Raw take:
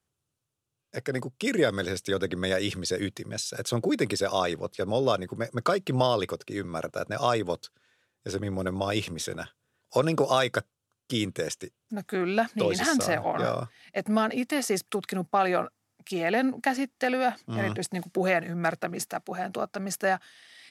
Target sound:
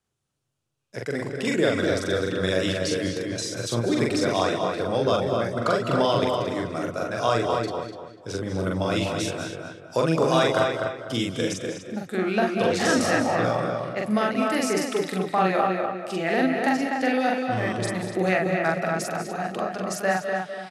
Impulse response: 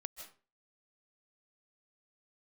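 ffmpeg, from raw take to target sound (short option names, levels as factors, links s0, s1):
-filter_complex "[0:a]lowpass=10000,asplit=2[s0][s1];[s1]adelay=248,lowpass=f=2700:p=1,volume=0.668,asplit=2[s2][s3];[s3]adelay=248,lowpass=f=2700:p=1,volume=0.33,asplit=2[s4][s5];[s5]adelay=248,lowpass=f=2700:p=1,volume=0.33,asplit=2[s6][s7];[s7]adelay=248,lowpass=f=2700:p=1,volume=0.33[s8];[s0][s2][s4][s6][s8]amix=inputs=5:normalize=0,asplit=2[s9][s10];[1:a]atrim=start_sample=2205,adelay=43[s11];[s10][s11]afir=irnorm=-1:irlink=0,volume=1.26[s12];[s9][s12]amix=inputs=2:normalize=0"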